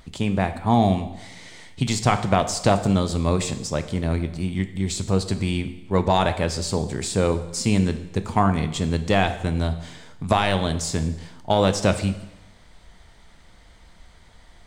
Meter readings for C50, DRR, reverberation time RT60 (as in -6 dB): 12.0 dB, 9.0 dB, 0.95 s